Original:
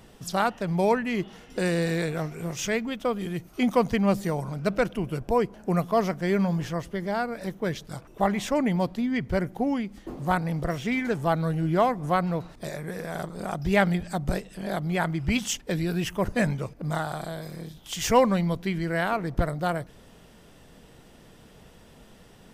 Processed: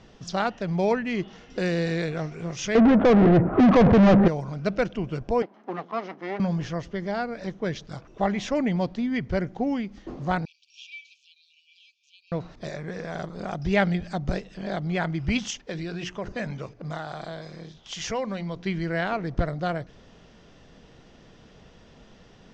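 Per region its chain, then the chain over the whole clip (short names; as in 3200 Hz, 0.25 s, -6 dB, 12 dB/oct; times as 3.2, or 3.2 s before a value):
2.75–4.28 LPF 1400 Hz 24 dB/oct + low shelf 210 Hz +6.5 dB + overdrive pedal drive 41 dB, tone 1100 Hz, clips at -8 dBFS
5.42–6.4 minimum comb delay 0.97 ms + HPF 250 Hz 24 dB/oct + tape spacing loss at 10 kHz 25 dB
10.45–12.32 compressor, threshold -26 dBFS + brick-wall FIR high-pass 2300 Hz + air absorption 100 m
15.5–18.66 low shelf 200 Hz -6 dB + notches 60/120/180/240/300/360/420 Hz + compressor 2:1, threshold -30 dBFS
whole clip: steep low-pass 6600 Hz 48 dB/oct; notch 890 Hz, Q 24; dynamic EQ 1100 Hz, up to -4 dB, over -39 dBFS, Q 2.5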